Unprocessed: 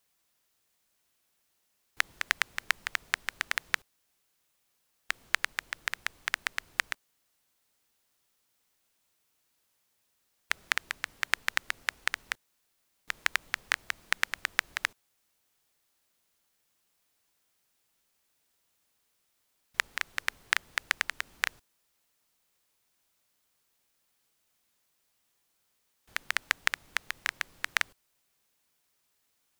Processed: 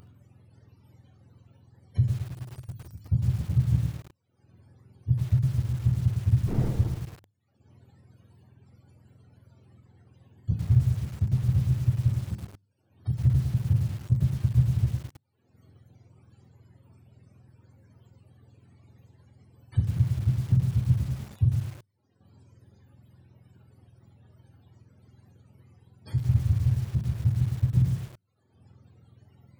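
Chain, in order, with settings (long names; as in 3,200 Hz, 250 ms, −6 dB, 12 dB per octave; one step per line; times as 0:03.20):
frequency axis turned over on the octave scale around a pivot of 440 Hz
0:06.47–0:06.87: wind on the microphone 210 Hz −30 dBFS
in parallel at +1 dB: upward compression, threshold −29 dBFS
on the sum: dynamic equaliser 130 Hz, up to +6 dB, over −36 dBFS, Q 5.2
reverb reduction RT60 1.1 s
brickwall limiter −10 dBFS, peak gain reduction 8 dB
mains-hum notches 50/100/150/200/250/300 Hz
0:02.11–0:03.05: first-order pre-emphasis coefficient 0.8
feedback echo with a high-pass in the loop 73 ms, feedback 41%, high-pass 230 Hz, level −12 dB
on a send at −6 dB: convolution reverb RT60 0.40 s, pre-delay 20 ms
on the sum: feedback echo at a low word length 107 ms, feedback 35%, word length 7 bits, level −5 dB
level −1.5 dB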